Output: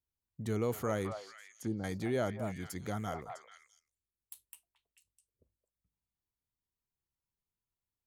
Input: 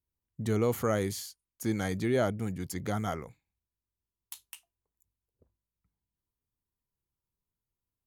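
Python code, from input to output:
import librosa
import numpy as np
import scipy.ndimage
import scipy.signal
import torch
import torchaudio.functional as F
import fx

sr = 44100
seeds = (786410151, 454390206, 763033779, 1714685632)

y = fx.env_lowpass_down(x, sr, base_hz=560.0, full_db=-28.0, at=(1.06, 1.84))
y = fx.spec_box(y, sr, start_s=3.23, length_s=2.7, low_hz=650.0, high_hz=7500.0, gain_db=-8)
y = fx.echo_stepped(y, sr, ms=218, hz=870.0, octaves=1.4, feedback_pct=70, wet_db=-3.0)
y = y * 10.0 ** (-5.5 / 20.0)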